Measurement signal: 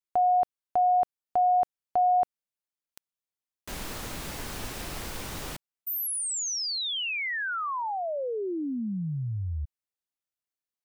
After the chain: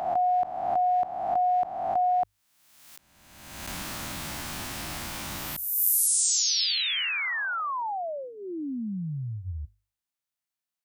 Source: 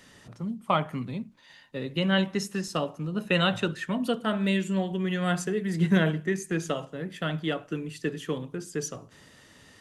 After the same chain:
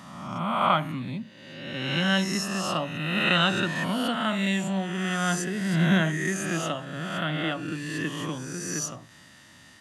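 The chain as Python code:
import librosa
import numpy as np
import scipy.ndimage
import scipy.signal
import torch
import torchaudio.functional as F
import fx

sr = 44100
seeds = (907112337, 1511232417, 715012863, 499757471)

y = fx.spec_swells(x, sr, rise_s=1.31)
y = fx.highpass(y, sr, hz=75.0, slope=6)
y = fx.peak_eq(y, sr, hz=450.0, db=-14.5, octaves=0.39)
y = fx.hum_notches(y, sr, base_hz=50, count=2)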